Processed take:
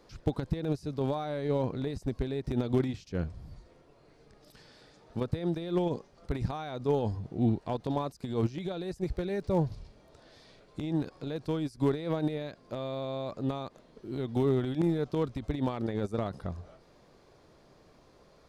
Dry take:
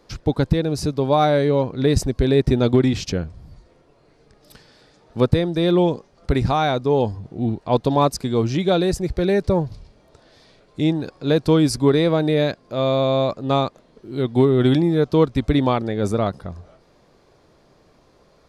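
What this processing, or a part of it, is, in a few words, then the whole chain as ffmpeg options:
de-esser from a sidechain: -filter_complex "[0:a]asplit=2[a][b];[b]highpass=5.7k,apad=whole_len=815269[c];[a][c]sidechaincompress=threshold=-55dB:ratio=4:attack=0.51:release=37,volume=-4dB"

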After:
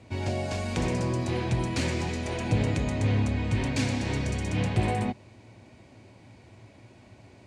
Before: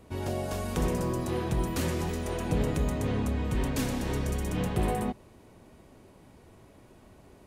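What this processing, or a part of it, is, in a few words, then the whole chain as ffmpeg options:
car door speaker: -af "highpass=81,equalizer=f=110:t=q:w=4:g=10,equalizer=f=160:t=q:w=4:g=-5,equalizer=f=430:t=q:w=4:g=-6,equalizer=f=1.2k:t=q:w=4:g=-6,equalizer=f=2.3k:t=q:w=4:g=7,equalizer=f=4.4k:t=q:w=4:g=4,lowpass=f=8.1k:w=0.5412,lowpass=f=8.1k:w=1.3066,volume=2.5dB"

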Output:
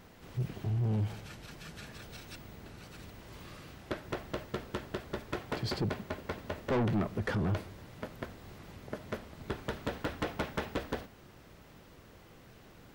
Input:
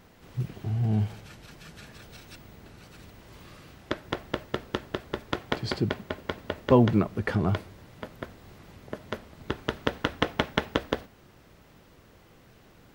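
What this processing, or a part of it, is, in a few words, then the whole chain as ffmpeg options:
saturation between pre-emphasis and de-emphasis: -af "highshelf=f=3.9k:g=8.5,asoftclip=type=tanh:threshold=-26.5dB,highshelf=f=3.9k:g=-8.5"

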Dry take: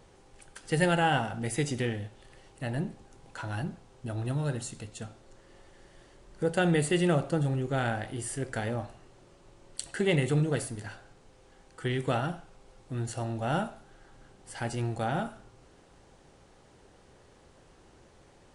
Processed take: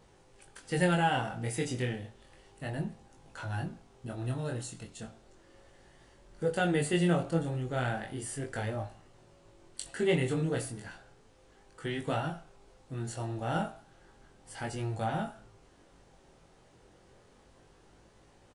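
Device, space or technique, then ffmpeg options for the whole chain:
double-tracked vocal: -filter_complex "[0:a]asplit=2[a][b];[b]adelay=18,volume=-11.5dB[c];[a][c]amix=inputs=2:normalize=0,flanger=delay=19:depth=5.3:speed=0.33"

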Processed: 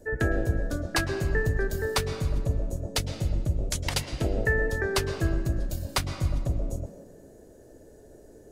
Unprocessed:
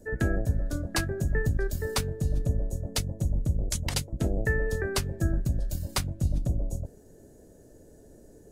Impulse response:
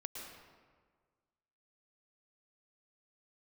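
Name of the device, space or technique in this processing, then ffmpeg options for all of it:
filtered reverb send: -filter_complex "[0:a]asplit=2[a][b];[b]highpass=f=190:w=0.5412,highpass=f=190:w=1.3066,lowpass=5.4k[c];[1:a]atrim=start_sample=2205[d];[c][d]afir=irnorm=-1:irlink=0,volume=0dB[e];[a][e]amix=inputs=2:normalize=0"

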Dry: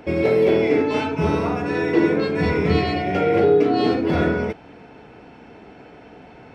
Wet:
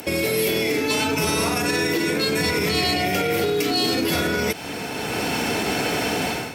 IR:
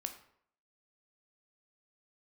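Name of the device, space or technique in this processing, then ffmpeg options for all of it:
FM broadcast chain: -filter_complex "[0:a]highpass=68,dynaudnorm=f=330:g=3:m=16dB,acrossover=split=250|1600[a][b][c];[a]acompressor=threshold=-29dB:ratio=4[d];[b]acompressor=threshold=-25dB:ratio=4[e];[c]acompressor=threshold=-34dB:ratio=4[f];[d][e][f]amix=inputs=3:normalize=0,aemphasis=mode=production:type=75fm,alimiter=limit=-18.5dB:level=0:latency=1:release=51,asoftclip=type=hard:threshold=-21dB,lowpass=f=15k:w=0.5412,lowpass=f=15k:w=1.3066,aemphasis=mode=production:type=75fm,volume=5dB"

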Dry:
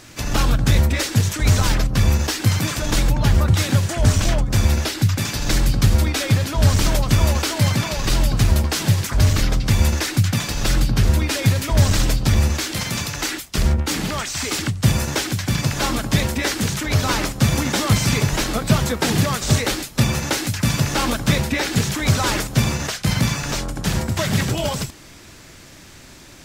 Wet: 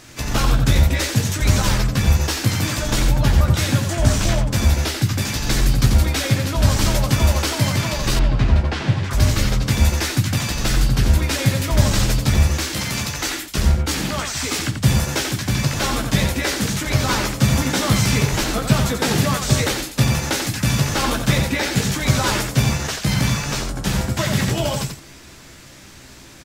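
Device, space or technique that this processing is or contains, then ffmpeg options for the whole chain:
slapback doubling: -filter_complex "[0:a]asplit=3[a][b][c];[b]adelay=15,volume=-6dB[d];[c]adelay=89,volume=-6dB[e];[a][d][e]amix=inputs=3:normalize=0,asettb=1/sr,asplit=3[f][g][h];[f]atrim=end=8.194[i];[g]atrim=start=8.19:end=9.11,asetpts=PTS-STARTPTS,afade=t=in:d=0.004:c=qsin,afade=t=out:st=0.916:d=0.004:c=qsin,lowpass=2.9k[j];[h]atrim=start=9.106[k];[i][j]acrossfade=d=0.004:c1=hsin:c2=qsin[l];[l][k]acrossfade=d=0.004:c1=qsin:c2=hsin,volume=-1dB"

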